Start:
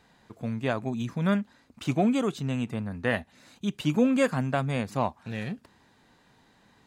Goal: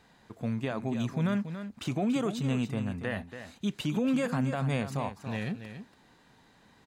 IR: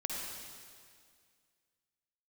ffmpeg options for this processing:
-filter_complex "[0:a]alimiter=limit=-21.5dB:level=0:latency=1:release=46,asplit=2[a][b];[b]aecho=0:1:283:0.316[c];[a][c]amix=inputs=2:normalize=0"

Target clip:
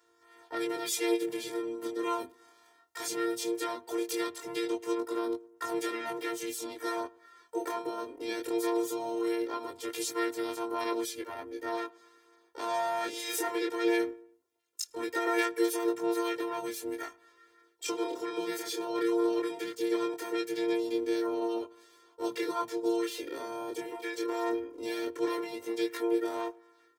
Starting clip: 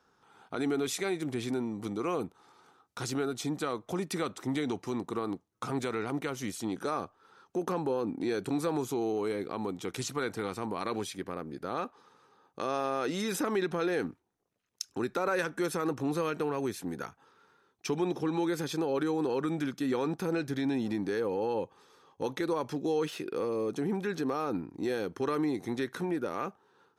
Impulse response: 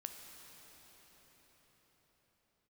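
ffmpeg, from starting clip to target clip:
-filter_complex "[0:a]highshelf=f=7.2k:g=5,acrossover=split=290|2300[a][b][c];[a]acompressor=threshold=-45dB:ratio=6[d];[d][b][c]amix=inputs=3:normalize=0,afftfilt=real='hypot(re,im)*cos(PI*b)':imag='0':win_size=512:overlap=0.75,flanger=delay=20:depth=7.8:speed=0.19,highpass=62,asplit=2[e][f];[f]adelay=107,lowpass=f=1.4k:p=1,volume=-23dB,asplit=2[g][h];[h]adelay=107,lowpass=f=1.4k:p=1,volume=0.51,asplit=2[i][j];[j]adelay=107,lowpass=f=1.4k:p=1,volume=0.51[k];[e][g][i][k]amix=inputs=4:normalize=0,asplit=2[l][m];[m]asetrate=58866,aresample=44100,atempo=0.749154,volume=-3dB[n];[l][n]amix=inputs=2:normalize=0,volume=5.5dB"

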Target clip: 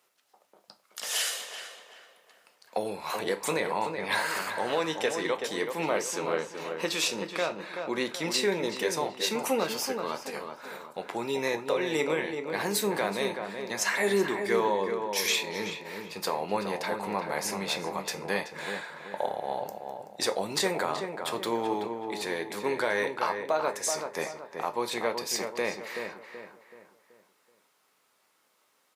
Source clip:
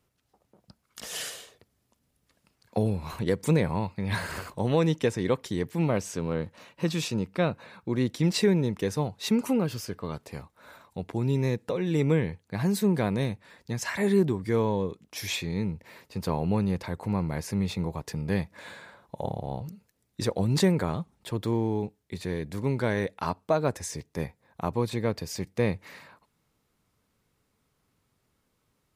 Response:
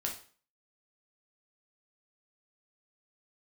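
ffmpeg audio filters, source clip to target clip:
-filter_complex "[0:a]highpass=600,alimiter=limit=-23.5dB:level=0:latency=1:release=274,asplit=2[a][b];[b]adelay=379,lowpass=f=2.1k:p=1,volume=-6dB,asplit=2[c][d];[d]adelay=379,lowpass=f=2.1k:p=1,volume=0.42,asplit=2[e][f];[f]adelay=379,lowpass=f=2.1k:p=1,volume=0.42,asplit=2[g][h];[h]adelay=379,lowpass=f=2.1k:p=1,volume=0.42,asplit=2[i][j];[j]adelay=379,lowpass=f=2.1k:p=1,volume=0.42[k];[a][c][e][g][i][k]amix=inputs=6:normalize=0,asplit=2[l][m];[1:a]atrim=start_sample=2205,asetrate=61740,aresample=44100[n];[m][n]afir=irnorm=-1:irlink=0,volume=-0.5dB[o];[l][o]amix=inputs=2:normalize=0,volume=3dB"

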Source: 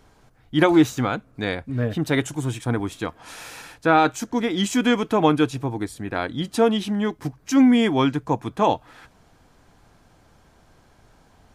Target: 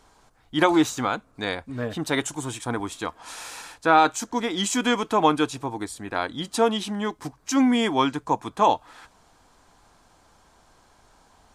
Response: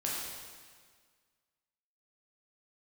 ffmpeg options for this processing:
-af "equalizer=f=125:t=o:w=1:g=-6,equalizer=f=1k:t=o:w=1:g=7,equalizer=f=4k:t=o:w=1:g=4,equalizer=f=8k:t=o:w=1:g=8,volume=-4dB"

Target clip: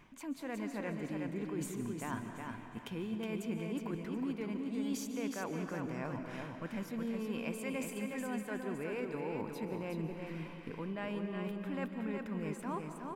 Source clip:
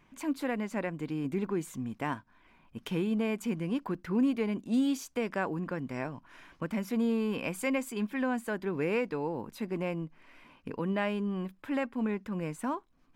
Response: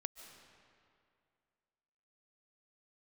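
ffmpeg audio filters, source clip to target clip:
-filter_complex "[0:a]areverse,acompressor=threshold=-42dB:ratio=6,areverse,aecho=1:1:366|732|1098:0.562|0.135|0.0324[a];[1:a]atrim=start_sample=2205[b];[a][b]afir=irnorm=-1:irlink=0,volume=7.5dB"

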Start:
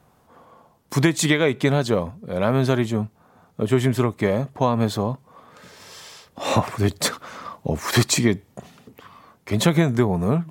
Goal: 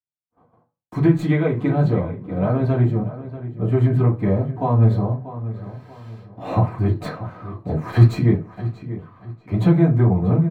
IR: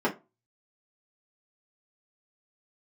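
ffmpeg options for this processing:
-filter_complex "[0:a]agate=range=-53dB:threshold=-48dB:ratio=16:detection=peak,lowshelf=f=140:t=q:w=1.5:g=14,acrossover=split=250|4700[a][b][c];[c]aeval=exprs='max(val(0),0)':c=same[d];[a][b][d]amix=inputs=3:normalize=0,flanger=delay=0.2:depth=8.8:regen=85:speed=0.93:shape=sinusoidal,asplit=2[e][f];[f]adelay=637,lowpass=f=3.1k:p=1,volume=-13.5dB,asplit=2[g][h];[h]adelay=637,lowpass=f=3.1k:p=1,volume=0.35,asplit=2[i][j];[j]adelay=637,lowpass=f=3.1k:p=1,volume=0.35[k];[e][g][i][k]amix=inputs=4:normalize=0[l];[1:a]atrim=start_sample=2205,asetrate=35280,aresample=44100[m];[l][m]afir=irnorm=-1:irlink=0,volume=-13dB"

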